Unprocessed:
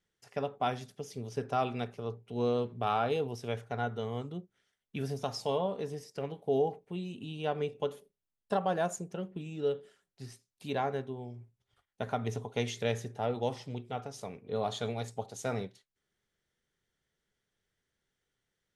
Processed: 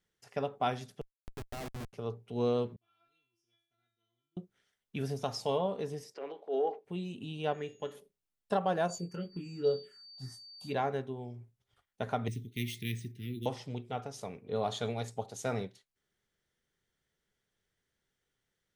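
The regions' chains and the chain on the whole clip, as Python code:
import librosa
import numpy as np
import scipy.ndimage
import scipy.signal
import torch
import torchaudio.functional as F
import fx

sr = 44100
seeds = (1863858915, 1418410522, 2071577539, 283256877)

y = fx.chain(x, sr, fx.delta_mod(bps=64000, step_db=-35.5),
    fx.level_steps(step_db=12),
    fx.schmitt(flips_db=-39.0), at=(1.01, 1.93))
y = fx.chain(y, sr, fx.tone_stack(knobs='6-0-2'),
    fx.comb_fb(f0_hz=340.0, decay_s=0.6, harmonics='all', damping=0.0, mix_pct=100), at=(2.76, 4.37))
y = fx.chain(y, sr, fx.transient(attack_db=-8, sustain_db=4),
    fx.highpass(hz=330.0, slope=24),
    fx.air_absorb(metres=150.0), at=(6.14, 6.85))
y = fx.peak_eq(y, sr, hz=1800.0, db=14.0, octaves=0.33, at=(7.53, 7.94), fade=0.02)
y = fx.comb_fb(y, sr, f0_hz=100.0, decay_s=0.32, harmonics='all', damping=0.0, mix_pct=60, at=(7.53, 7.94), fade=0.02)
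y = fx.dmg_tone(y, sr, hz=6700.0, level_db=-68.0, at=(7.53, 7.94), fade=0.02)
y = fx.dmg_tone(y, sr, hz=4600.0, level_db=-48.0, at=(8.88, 10.72), fade=0.02)
y = fx.env_phaser(y, sr, low_hz=280.0, high_hz=2400.0, full_db=-28.0, at=(8.88, 10.72), fade=0.02)
y = fx.doubler(y, sr, ms=23.0, db=-5.0, at=(8.88, 10.72), fade=0.02)
y = fx.chain(y, sr, fx.cheby1_bandstop(low_hz=350.0, high_hz=2000.0, order=4),
    fx.high_shelf(hz=8200.0, db=-9.5),
    fx.resample_bad(factor=3, down='filtered', up='hold'), at=(12.28, 13.46))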